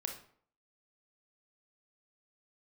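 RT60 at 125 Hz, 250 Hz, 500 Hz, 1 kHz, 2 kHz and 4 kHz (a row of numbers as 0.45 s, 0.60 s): 0.55 s, 0.55 s, 0.55 s, 0.55 s, 0.45 s, 0.40 s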